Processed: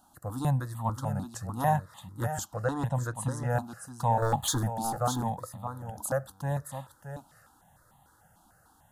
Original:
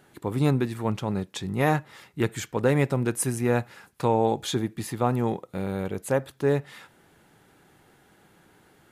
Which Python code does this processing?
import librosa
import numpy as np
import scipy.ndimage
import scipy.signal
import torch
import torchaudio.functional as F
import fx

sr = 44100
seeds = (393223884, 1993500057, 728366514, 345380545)

y = fx.lowpass(x, sr, hz=6100.0, slope=12, at=(2.56, 3.5))
y = fx.leveller(y, sr, passes=2, at=(4.22, 4.78))
y = fx.over_compress(y, sr, threshold_db=-40.0, ratio=-1.0, at=(5.35, 6.09))
y = fx.fixed_phaser(y, sr, hz=950.0, stages=4)
y = y + 10.0 ** (-9.0 / 20.0) * np.pad(y, (int(621 * sr / 1000.0), 0))[:len(y)]
y = fx.phaser_held(y, sr, hz=6.7, low_hz=500.0, high_hz=1500.0)
y = y * librosa.db_to_amplitude(2.0)